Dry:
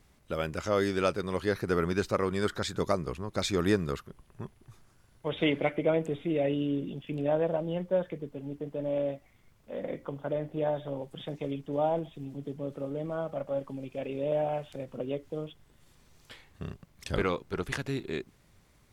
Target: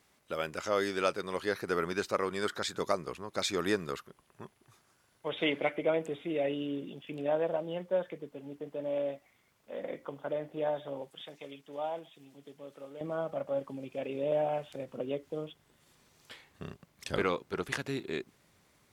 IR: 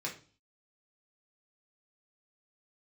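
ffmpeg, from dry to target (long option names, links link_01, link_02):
-af "asetnsamples=nb_out_samples=441:pad=0,asendcmd='11.11 highpass f 1500;13.01 highpass f 230',highpass=frequency=470:poles=1"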